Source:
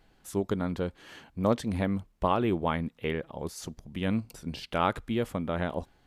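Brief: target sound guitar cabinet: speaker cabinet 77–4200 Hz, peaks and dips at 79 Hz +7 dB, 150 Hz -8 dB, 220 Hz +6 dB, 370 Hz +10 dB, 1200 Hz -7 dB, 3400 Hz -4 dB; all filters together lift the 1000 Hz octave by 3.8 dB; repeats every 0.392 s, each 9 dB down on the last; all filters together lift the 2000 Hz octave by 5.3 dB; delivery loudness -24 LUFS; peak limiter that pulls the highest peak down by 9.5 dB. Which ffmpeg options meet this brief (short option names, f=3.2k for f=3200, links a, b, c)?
-af "equalizer=f=1k:t=o:g=6,equalizer=f=2k:t=o:g=6,alimiter=limit=-15.5dB:level=0:latency=1,highpass=77,equalizer=f=79:t=q:w=4:g=7,equalizer=f=150:t=q:w=4:g=-8,equalizer=f=220:t=q:w=4:g=6,equalizer=f=370:t=q:w=4:g=10,equalizer=f=1.2k:t=q:w=4:g=-7,equalizer=f=3.4k:t=q:w=4:g=-4,lowpass=f=4.2k:w=0.5412,lowpass=f=4.2k:w=1.3066,aecho=1:1:392|784|1176|1568:0.355|0.124|0.0435|0.0152,volume=4dB"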